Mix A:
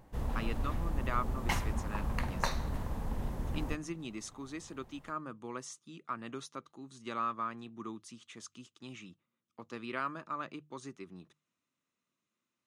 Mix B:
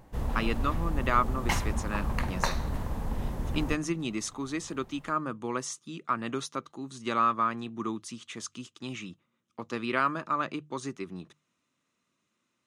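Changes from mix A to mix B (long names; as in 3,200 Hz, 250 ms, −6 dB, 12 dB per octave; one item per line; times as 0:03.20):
speech +9.5 dB
background +4.0 dB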